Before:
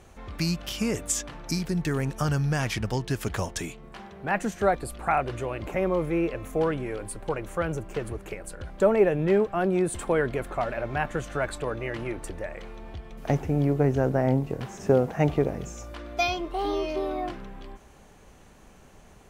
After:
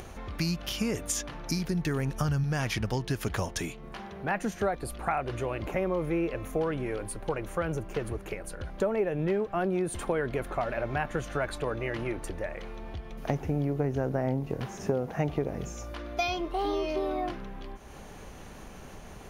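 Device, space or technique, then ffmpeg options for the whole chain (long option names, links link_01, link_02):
upward and downward compression: -filter_complex "[0:a]bandreject=frequency=7800:width=5.1,asettb=1/sr,asplit=3[link_01][link_02][link_03];[link_01]atrim=end=1.974[link_04];[link_02]atrim=start=1.97:end=2.44,asetpts=PTS-STARTPTS,afade=type=in:duration=0.004:curve=qsin,afade=type=out:start_time=0.466:duration=0.004:curve=qsin,asubboost=boost=9.5:cutoff=220[link_05];[link_03]atrim=start=2.436[link_06];[link_04][link_05]acrossfade=duration=0.004:curve1=hsin:curve2=qsin[link_07];[link_07][link_06]acrossfade=duration=0.004:curve1=qsin:curve2=hsin,acompressor=mode=upward:threshold=-36dB:ratio=2.5,acompressor=threshold=-25dB:ratio=5"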